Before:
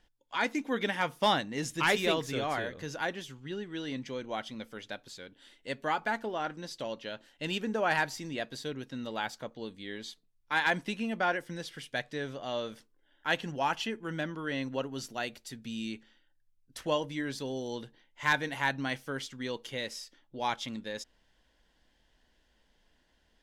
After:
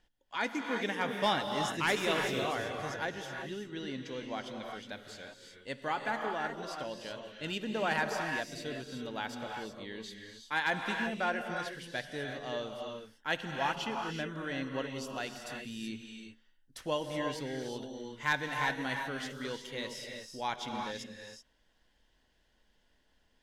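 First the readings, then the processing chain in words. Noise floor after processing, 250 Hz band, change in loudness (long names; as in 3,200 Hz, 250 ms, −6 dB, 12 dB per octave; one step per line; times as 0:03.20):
−71 dBFS, −2.5 dB, −2.0 dB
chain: reverb whose tail is shaped and stops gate 400 ms rising, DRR 3 dB
level −3.5 dB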